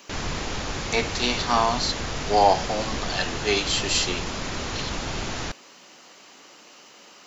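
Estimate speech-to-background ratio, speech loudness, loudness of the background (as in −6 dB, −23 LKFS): 6.0 dB, −24.5 LKFS, −30.5 LKFS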